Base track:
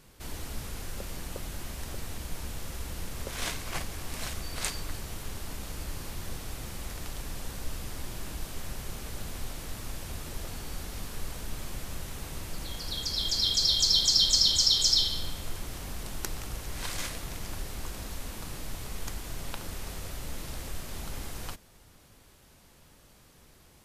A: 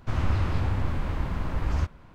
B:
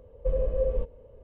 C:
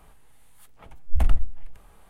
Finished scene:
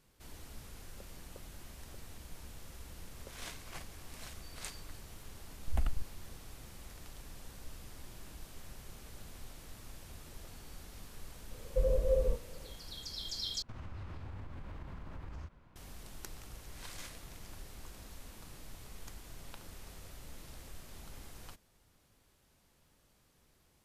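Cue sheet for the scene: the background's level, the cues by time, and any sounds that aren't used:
base track −12 dB
0:04.57: mix in C −7.5 dB + output level in coarse steps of 19 dB
0:11.51: mix in B −3 dB
0:13.62: overwrite with A −11 dB + downward compressor, threshold −30 dBFS

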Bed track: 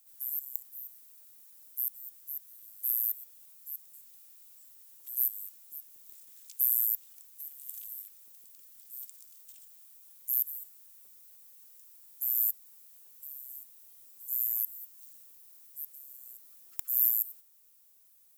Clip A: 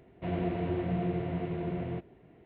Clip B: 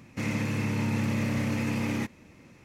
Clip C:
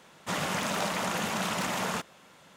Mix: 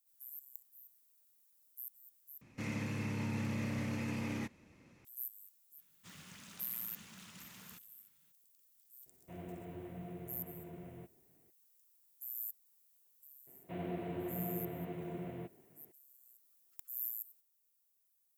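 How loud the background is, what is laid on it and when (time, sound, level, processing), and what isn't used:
bed track −14.5 dB
0:02.41: overwrite with B −9.5 dB
0:05.77: mix in C −5 dB, fades 0.02 s + guitar amp tone stack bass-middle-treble 6-0-2
0:09.06: mix in A −15.5 dB + parametric band 63 Hz −3 dB
0:13.47: mix in A −8 dB + high-pass filter 130 Hz

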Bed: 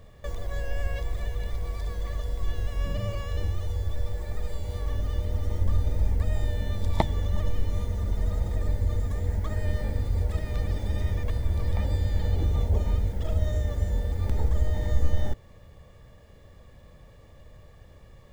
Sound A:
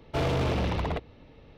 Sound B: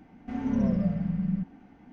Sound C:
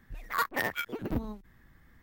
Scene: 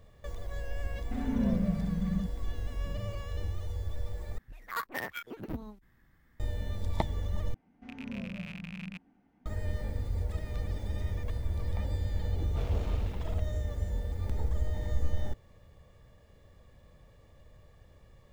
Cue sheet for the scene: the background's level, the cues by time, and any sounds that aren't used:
bed −6.5 dB
0:00.83: mix in B −3.5 dB
0:04.38: overwrite with C −6 dB
0:07.54: overwrite with B −14 dB + loose part that buzzes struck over −33 dBFS, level −19 dBFS
0:12.42: mix in A −16 dB

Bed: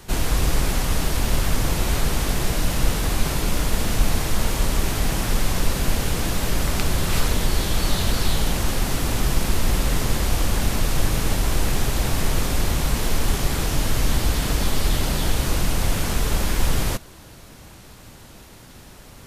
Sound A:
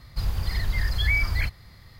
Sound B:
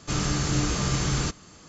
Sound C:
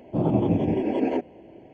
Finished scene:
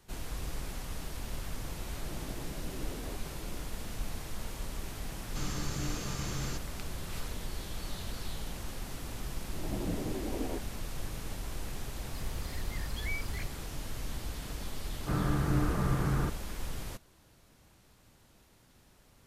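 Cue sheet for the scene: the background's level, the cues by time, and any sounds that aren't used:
bed −18 dB
0:01.96: mix in C −6.5 dB + downward compressor 4 to 1, threshold −39 dBFS
0:05.27: mix in B −12 dB
0:09.38: mix in C −13.5 dB + fade in at the beginning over 0.51 s
0:11.98: mix in A −14.5 dB
0:14.99: mix in B −3.5 dB + low-pass filter 1,700 Hz 24 dB per octave

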